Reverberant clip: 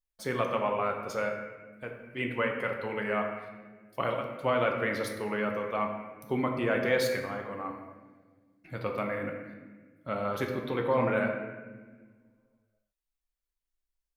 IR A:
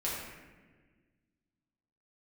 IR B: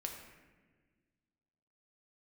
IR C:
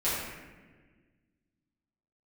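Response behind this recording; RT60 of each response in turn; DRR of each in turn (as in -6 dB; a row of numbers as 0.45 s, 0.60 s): B; 1.4 s, 1.5 s, 1.4 s; -7.5 dB, 1.5 dB, -12.0 dB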